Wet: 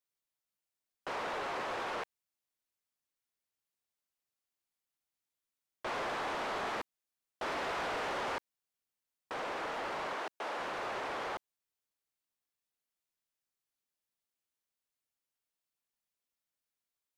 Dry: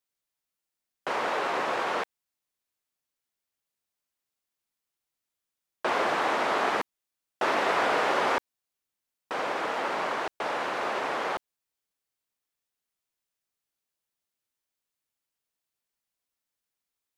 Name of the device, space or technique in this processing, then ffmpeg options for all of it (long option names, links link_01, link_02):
saturation between pre-emphasis and de-emphasis: -filter_complex "[0:a]highshelf=frequency=8100:gain=10.5,asoftclip=type=tanh:threshold=-28dB,highshelf=frequency=8100:gain=-10.5,asettb=1/sr,asplit=3[link_01][link_02][link_03];[link_01]atrim=end=10.134[link_04];[link_02]atrim=start=10.13:end=10.58,asetpts=PTS-STARTPTS,afade=type=in:duration=0.004:curve=qsin,afade=type=out:start_time=0.446:duration=0.004:curve=qsin,highpass=240[link_05];[link_03]atrim=start=10.576[link_06];[link_04][link_05]acrossfade=duration=0.004:curve1=hsin:curve2=qsin[link_07];[link_07][link_06]acrossfade=duration=0.004:curve1=qsin:curve2=hsin,volume=-5dB"